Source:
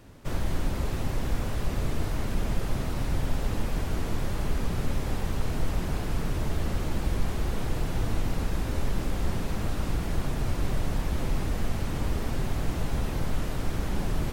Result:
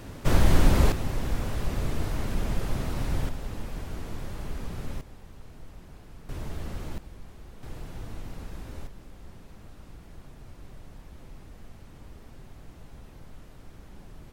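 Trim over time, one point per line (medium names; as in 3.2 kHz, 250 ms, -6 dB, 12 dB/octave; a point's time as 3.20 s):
+9 dB
from 0.92 s -0.5 dB
from 3.29 s -7 dB
from 5.01 s -18.5 dB
from 6.29 s -7 dB
from 6.98 s -18 dB
from 7.63 s -11 dB
from 8.87 s -18.5 dB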